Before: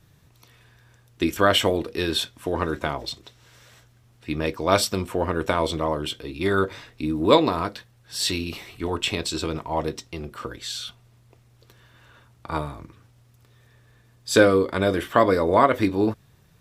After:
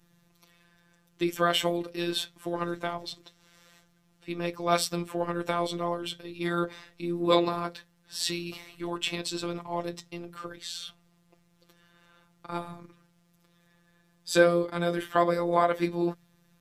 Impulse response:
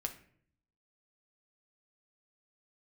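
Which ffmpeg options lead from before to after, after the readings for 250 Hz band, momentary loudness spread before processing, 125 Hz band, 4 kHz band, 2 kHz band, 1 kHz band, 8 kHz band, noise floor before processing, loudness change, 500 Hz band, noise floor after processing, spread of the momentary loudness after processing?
−5.5 dB, 16 LU, −7.0 dB, −6.0 dB, −6.0 dB, −5.5 dB, −5.5 dB, −57 dBFS, −6.0 dB, −6.0 dB, −66 dBFS, 16 LU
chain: -af "bandreject=frequency=50:width_type=h:width=6,bandreject=frequency=100:width_type=h:width=6,bandreject=frequency=150:width_type=h:width=6,afftfilt=real='hypot(re,im)*cos(PI*b)':imag='0':win_size=1024:overlap=0.75,volume=-2.5dB"

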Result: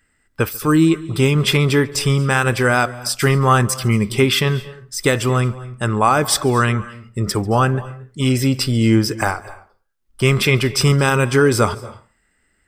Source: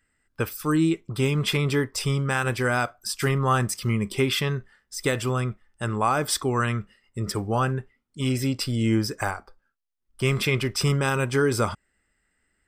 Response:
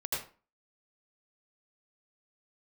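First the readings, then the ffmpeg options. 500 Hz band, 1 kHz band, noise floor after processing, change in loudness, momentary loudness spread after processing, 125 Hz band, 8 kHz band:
+8.0 dB, +8.0 dB, −64 dBFS, +8.0 dB, 9 LU, +8.0 dB, +8.0 dB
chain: -filter_complex "[0:a]asplit=2[link_01][link_02];[1:a]atrim=start_sample=2205,adelay=142[link_03];[link_02][link_03]afir=irnorm=-1:irlink=0,volume=-22dB[link_04];[link_01][link_04]amix=inputs=2:normalize=0,volume=8dB"

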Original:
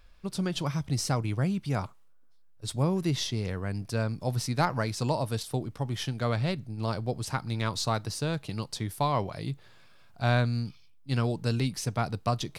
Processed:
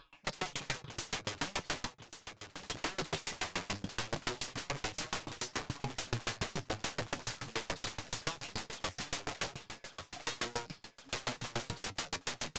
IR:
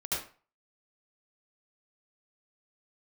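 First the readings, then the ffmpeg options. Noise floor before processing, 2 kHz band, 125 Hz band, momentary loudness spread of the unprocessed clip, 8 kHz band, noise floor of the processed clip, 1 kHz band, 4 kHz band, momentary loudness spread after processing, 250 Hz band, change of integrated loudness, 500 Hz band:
−54 dBFS, −2.0 dB, −17.5 dB, 7 LU, −2.5 dB, −64 dBFS, −9.0 dB, −2.5 dB, 6 LU, −14.5 dB, −9.0 dB, −11.0 dB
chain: -filter_complex "[0:a]afftfilt=real='re*pow(10,13/40*sin(2*PI*(0.62*log(max(b,1)*sr/1024/100)/log(2)-(-2.3)*(pts-256)/sr)))':imag='im*pow(10,13/40*sin(2*PI*(0.62*log(max(b,1)*sr/1024/100)/log(2)-(-2.3)*(pts-256)/sr)))':win_size=1024:overlap=0.75,highpass=frequency=400:poles=1,highshelf=frequency=6300:gain=-11.5,aecho=1:1:7.1:0.93,acompressor=threshold=-33dB:ratio=5,aeval=exprs='(mod(84.1*val(0)+1,2)-1)/84.1':channel_layout=same,aeval=exprs='0.0126*(cos(1*acos(clip(val(0)/0.0126,-1,1)))-cos(1*PI/2))+0.00141*(cos(2*acos(clip(val(0)/0.0126,-1,1)))-cos(2*PI/2))+0.000224*(cos(3*acos(clip(val(0)/0.0126,-1,1)))-cos(3*PI/2))+0.000355*(cos(4*acos(clip(val(0)/0.0126,-1,1)))-cos(4*PI/2))+0.000112*(cos(6*acos(clip(val(0)/0.0126,-1,1)))-cos(6*PI/2))':channel_layout=same,flanger=delay=6.3:depth=7.4:regen=57:speed=0.19:shape=sinusoidal,asplit=2[link_01][link_02];[link_02]aecho=0:1:1120|2240|3360|4480|5600:0.316|0.142|0.064|0.0288|0.013[link_03];[link_01][link_03]amix=inputs=2:normalize=0,aresample=16000,aresample=44100,aeval=exprs='val(0)*pow(10,-30*if(lt(mod(7*n/s,1),2*abs(7)/1000),1-mod(7*n/s,1)/(2*abs(7)/1000),(mod(7*n/s,1)-2*abs(7)/1000)/(1-2*abs(7)/1000))/20)':channel_layout=same,volume=17dB"

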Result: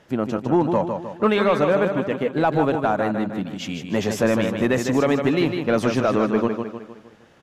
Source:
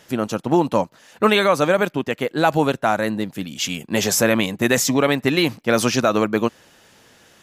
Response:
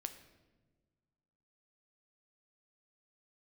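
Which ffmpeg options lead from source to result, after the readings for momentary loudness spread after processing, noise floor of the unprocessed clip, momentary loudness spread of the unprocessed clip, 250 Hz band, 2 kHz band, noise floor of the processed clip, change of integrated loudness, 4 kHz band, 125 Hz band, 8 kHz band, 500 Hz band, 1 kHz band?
8 LU, −53 dBFS, 8 LU, 0.0 dB, −5.5 dB, −51 dBFS, −2.0 dB, −9.0 dB, 0.0 dB, −14.0 dB, −0.5 dB, −2.5 dB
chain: -filter_complex "[0:a]asplit=2[link_01][link_02];[link_02]aecho=0:1:154|308|462|616|770:0.447|0.205|0.0945|0.0435|0.02[link_03];[link_01][link_03]amix=inputs=2:normalize=0,asoftclip=type=tanh:threshold=-7.5dB,lowpass=frequency=1300:poles=1"

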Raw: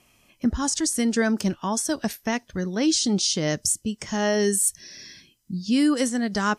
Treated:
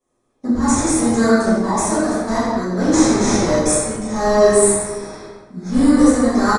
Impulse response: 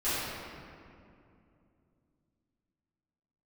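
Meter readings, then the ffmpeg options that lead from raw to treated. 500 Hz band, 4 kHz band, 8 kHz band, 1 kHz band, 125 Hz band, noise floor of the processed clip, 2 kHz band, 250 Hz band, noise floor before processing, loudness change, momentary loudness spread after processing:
+11.0 dB, −1.5 dB, +4.5 dB, +11.0 dB, +6.5 dB, −66 dBFS, +5.0 dB, +8.0 dB, −63 dBFS, +7.5 dB, 13 LU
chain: -filter_complex "[0:a]bandreject=frequency=50:width_type=h:width=6,bandreject=frequency=100:width_type=h:width=6,bandreject=frequency=150:width_type=h:width=6,agate=range=-16dB:threshold=-50dB:ratio=16:detection=peak,lowshelf=frequency=200:gain=-10,bandreject=frequency=4700:width=5,acrossover=split=100|1300|5700[link_01][link_02][link_03][link_04];[link_03]acrusher=samples=15:mix=1:aa=0.000001[link_05];[link_01][link_02][link_05][link_04]amix=inputs=4:normalize=0,asplit=2[link_06][link_07];[link_07]adelay=332,lowpass=frequency=1800:poles=1,volume=-13.5dB,asplit=2[link_08][link_09];[link_09]adelay=332,lowpass=frequency=1800:poles=1,volume=0.28,asplit=2[link_10][link_11];[link_11]adelay=332,lowpass=frequency=1800:poles=1,volume=0.28[link_12];[link_06][link_08][link_10][link_12]amix=inputs=4:normalize=0[link_13];[1:a]atrim=start_sample=2205,afade=type=out:start_time=0.35:duration=0.01,atrim=end_sample=15876[link_14];[link_13][link_14]afir=irnorm=-1:irlink=0,aresample=22050,aresample=44100,volume=1dB"

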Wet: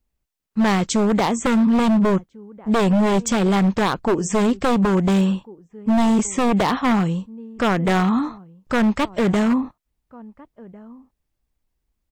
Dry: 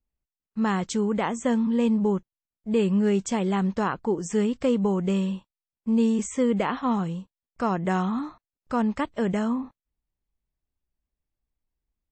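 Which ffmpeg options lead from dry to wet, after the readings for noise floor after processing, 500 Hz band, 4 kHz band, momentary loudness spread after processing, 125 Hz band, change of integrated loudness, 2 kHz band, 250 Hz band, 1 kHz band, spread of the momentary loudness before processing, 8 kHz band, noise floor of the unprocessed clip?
−77 dBFS, +5.0 dB, +10.5 dB, 7 LU, +7.0 dB, +6.0 dB, +9.0 dB, +6.0 dB, +7.5 dB, 9 LU, +8.5 dB, below −85 dBFS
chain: -filter_complex "[0:a]asplit=2[link_01][link_02];[link_02]adelay=1399,volume=-24dB,highshelf=frequency=4000:gain=-31.5[link_03];[link_01][link_03]amix=inputs=2:normalize=0,aeval=exprs='0.0944*(abs(mod(val(0)/0.0944+3,4)-2)-1)':channel_layout=same,volume=8.5dB"

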